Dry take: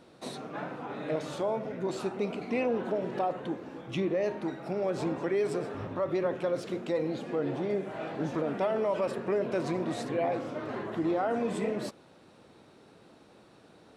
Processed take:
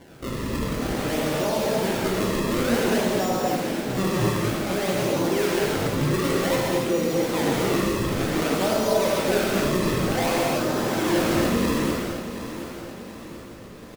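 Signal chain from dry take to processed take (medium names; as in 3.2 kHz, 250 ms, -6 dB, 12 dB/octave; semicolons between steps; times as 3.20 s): in parallel at -3 dB: compressor with a negative ratio -37 dBFS; on the sum: decimation with a swept rate 34×, swing 160% 0.54 Hz; feedback delay 729 ms, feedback 46%, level -11 dB; gated-style reverb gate 330 ms flat, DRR -4.5 dB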